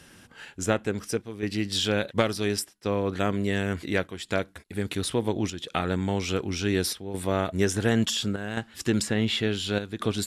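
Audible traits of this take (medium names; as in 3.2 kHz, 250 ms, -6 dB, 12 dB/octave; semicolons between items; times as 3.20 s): chopped level 0.7 Hz, depth 60%, duty 85%; MP2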